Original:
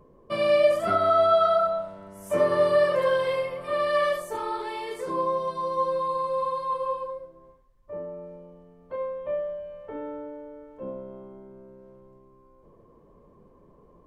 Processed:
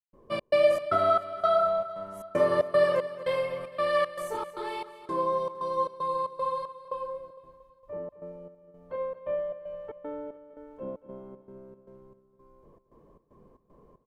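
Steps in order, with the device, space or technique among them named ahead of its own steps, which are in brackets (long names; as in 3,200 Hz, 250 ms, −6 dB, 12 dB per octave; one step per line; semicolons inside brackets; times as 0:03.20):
trance gate with a delay (gate pattern ".xx.xx.xx..xxx" 115 BPM −60 dB; repeating echo 229 ms, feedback 56%, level −15 dB)
level −1.5 dB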